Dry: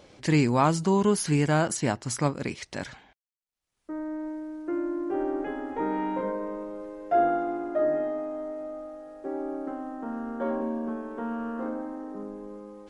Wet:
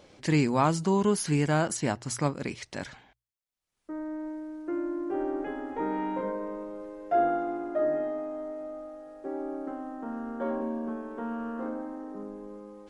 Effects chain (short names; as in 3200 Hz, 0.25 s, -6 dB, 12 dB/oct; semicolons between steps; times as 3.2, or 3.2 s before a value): notches 60/120 Hz; gain -2 dB